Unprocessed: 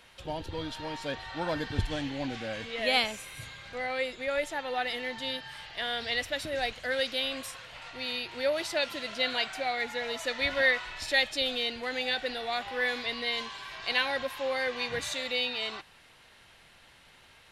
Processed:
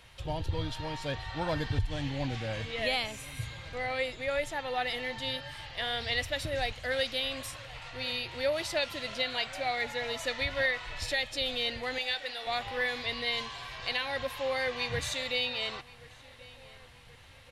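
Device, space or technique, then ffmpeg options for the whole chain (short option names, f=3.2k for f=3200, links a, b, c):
car stereo with a boomy subwoofer: -filter_complex "[0:a]asettb=1/sr,asplit=3[a][b][c];[a]atrim=end=11.984[d];[b]atrim=start=11.98:end=12.47,asetpts=PTS-STARTPTS,afade=t=in:d=0.004:c=qsin,afade=t=out:st=0.486:d=0.004:c=qsin,highpass=f=920:p=1[e];[c]atrim=start=12.466[f];[d][e]acrossfade=d=0.004:c1=hsin:c2=qsin[g];[g][f]acrossfade=d=0.004:c1=qsin:c2=hsin,lowshelf=f=160:t=q:w=1.5:g=8.5,equalizer=f=1.5k:w=7.6:g=-4,alimiter=limit=-19dB:level=0:latency=1:release=288,asplit=2[h][i];[i]adelay=1079,lowpass=f=3.3k:p=1,volume=-20dB,asplit=2[j][k];[k]adelay=1079,lowpass=f=3.3k:p=1,volume=0.52,asplit=2[l][m];[m]adelay=1079,lowpass=f=3.3k:p=1,volume=0.52,asplit=2[n][o];[o]adelay=1079,lowpass=f=3.3k:p=1,volume=0.52[p];[h][j][l][n][p]amix=inputs=5:normalize=0"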